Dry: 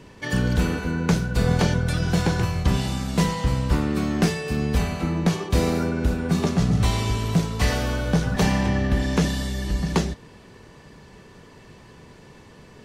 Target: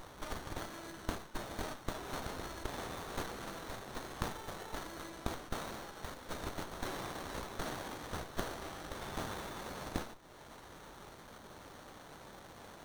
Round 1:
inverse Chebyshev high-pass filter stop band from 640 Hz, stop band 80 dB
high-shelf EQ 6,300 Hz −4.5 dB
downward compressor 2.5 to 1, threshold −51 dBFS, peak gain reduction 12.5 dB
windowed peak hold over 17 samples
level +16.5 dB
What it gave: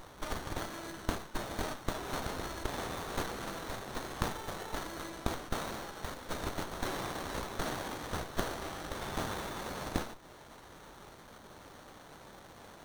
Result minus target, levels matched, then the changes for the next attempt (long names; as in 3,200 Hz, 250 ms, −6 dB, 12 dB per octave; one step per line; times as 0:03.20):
downward compressor: peak gain reduction −4 dB
change: downward compressor 2.5 to 1, threshold −58 dBFS, peak gain reduction 17 dB